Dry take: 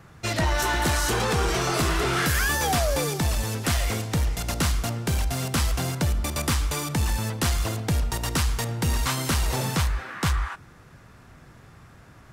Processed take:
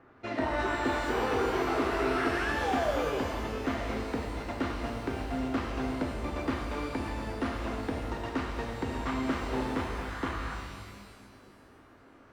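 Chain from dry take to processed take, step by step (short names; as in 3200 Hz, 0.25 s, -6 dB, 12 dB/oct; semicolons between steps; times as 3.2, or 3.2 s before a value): LPF 1900 Hz 12 dB/oct; resonant low shelf 210 Hz -8 dB, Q 3; shimmer reverb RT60 1.8 s, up +12 st, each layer -8 dB, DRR 1.5 dB; gain -6.5 dB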